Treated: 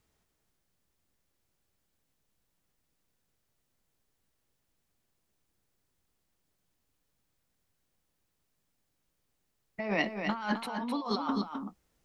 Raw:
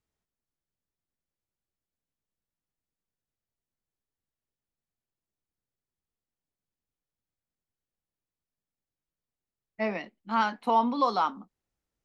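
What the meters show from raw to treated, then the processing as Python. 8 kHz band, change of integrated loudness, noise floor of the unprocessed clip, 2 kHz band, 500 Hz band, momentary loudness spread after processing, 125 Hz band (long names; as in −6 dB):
can't be measured, −5.5 dB, below −85 dBFS, +0.5 dB, −4.5 dB, 10 LU, +5.0 dB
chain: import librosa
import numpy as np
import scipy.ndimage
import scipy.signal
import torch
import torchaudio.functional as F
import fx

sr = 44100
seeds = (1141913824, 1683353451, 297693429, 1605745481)

p1 = fx.over_compress(x, sr, threshold_db=-37.0, ratio=-1.0)
p2 = p1 + fx.echo_single(p1, sr, ms=259, db=-6.5, dry=0)
y = p2 * librosa.db_to_amplitude(3.0)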